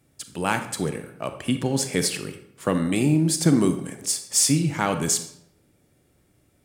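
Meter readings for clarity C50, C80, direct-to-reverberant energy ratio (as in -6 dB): 9.5 dB, 12.0 dB, 7.5 dB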